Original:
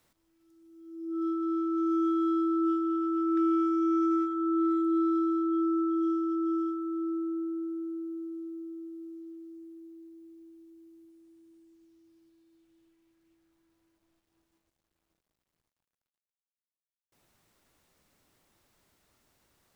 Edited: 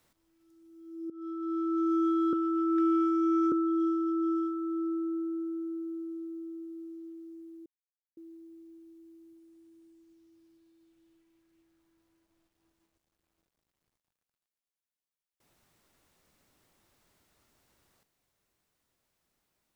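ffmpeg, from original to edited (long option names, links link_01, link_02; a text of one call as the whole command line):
ffmpeg -i in.wav -filter_complex "[0:a]asplit=5[link_01][link_02][link_03][link_04][link_05];[link_01]atrim=end=1.1,asetpts=PTS-STARTPTS,afade=type=out:start_time=1.096:duration=0.004:curve=hsin:silence=0.133352[link_06];[link_02]atrim=start=1.1:end=2.332,asetpts=PTS-STARTPTS,afade=type=in:duration=0.61:silence=0.133352[link_07];[link_03]atrim=start=2.918:end=4.112[link_08];[link_04]atrim=start=5.748:end=9.89,asetpts=PTS-STARTPTS,afade=type=out:start_time=4.138:duration=0.004:curve=hsin,apad=pad_dur=0.51[link_09];[link_05]atrim=start=9.89,asetpts=PTS-STARTPTS,afade=type=in:duration=0.004:curve=hsin[link_10];[link_06][link_07]concat=n=2:v=0:a=1[link_11];[link_11][link_08]acrossfade=duration=0.004:curve1=hsin:curve2=hsin[link_12];[link_09][link_10]concat=n=2:v=0:a=1[link_13];[link_12][link_13]acrossfade=duration=0.004:curve1=hsin:curve2=hsin" out.wav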